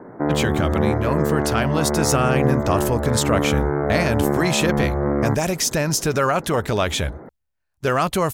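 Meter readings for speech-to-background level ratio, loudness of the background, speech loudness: 0.5 dB, -22.5 LUFS, -22.0 LUFS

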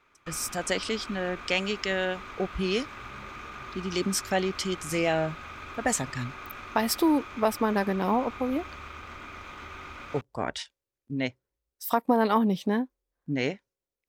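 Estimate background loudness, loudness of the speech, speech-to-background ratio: -41.5 LUFS, -29.0 LUFS, 12.5 dB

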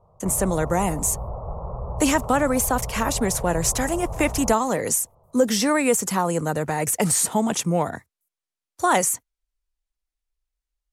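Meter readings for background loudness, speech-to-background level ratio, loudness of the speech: -33.5 LUFS, 11.0 dB, -22.5 LUFS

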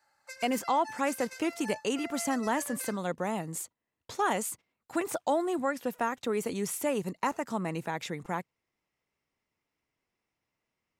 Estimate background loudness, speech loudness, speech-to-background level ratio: -44.5 LUFS, -32.0 LUFS, 12.5 dB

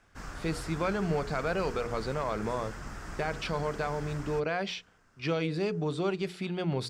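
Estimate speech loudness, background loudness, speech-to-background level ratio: -33.0 LUFS, -43.0 LUFS, 10.0 dB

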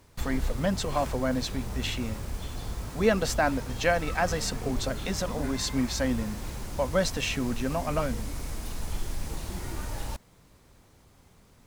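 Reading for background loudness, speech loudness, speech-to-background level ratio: -37.0 LUFS, -29.5 LUFS, 7.5 dB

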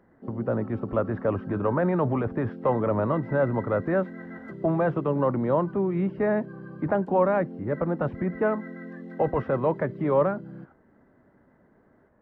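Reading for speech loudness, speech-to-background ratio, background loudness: -26.5 LUFS, 14.0 dB, -40.5 LUFS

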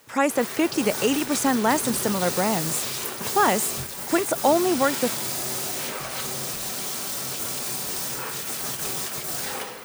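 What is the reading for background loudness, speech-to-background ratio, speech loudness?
-27.5 LUFS, 4.0 dB, -23.5 LUFS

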